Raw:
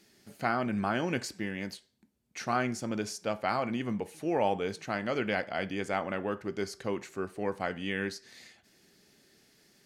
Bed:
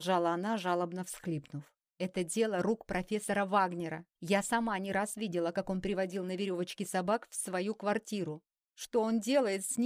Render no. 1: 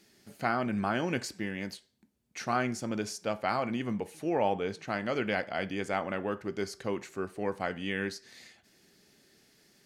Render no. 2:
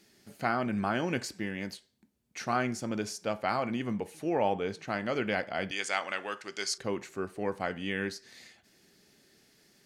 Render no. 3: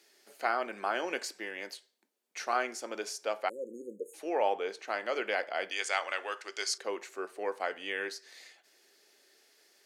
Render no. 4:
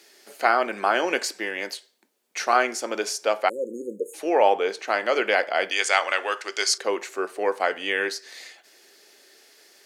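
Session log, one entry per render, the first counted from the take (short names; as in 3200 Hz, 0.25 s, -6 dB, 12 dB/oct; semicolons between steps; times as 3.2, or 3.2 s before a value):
4.29–4.88 high shelf 6500 Hz -9 dB
5.71–6.78 weighting filter ITU-R 468
3.49–4.14 spectral delete 580–6400 Hz; HPF 390 Hz 24 dB/oct
gain +10.5 dB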